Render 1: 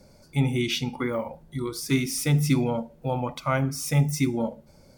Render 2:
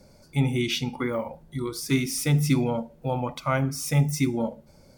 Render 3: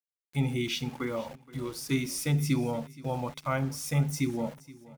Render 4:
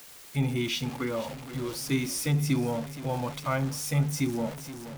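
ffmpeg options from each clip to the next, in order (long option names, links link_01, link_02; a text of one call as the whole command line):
ffmpeg -i in.wav -af anull out.wav
ffmpeg -i in.wav -af "aeval=exprs='val(0)*gte(abs(val(0)),0.01)':channel_layout=same,aecho=1:1:473|946|1419:0.1|0.035|0.0123,volume=-5dB" out.wav
ffmpeg -i in.wav -af "aeval=exprs='val(0)+0.5*0.0141*sgn(val(0))':channel_layout=same" out.wav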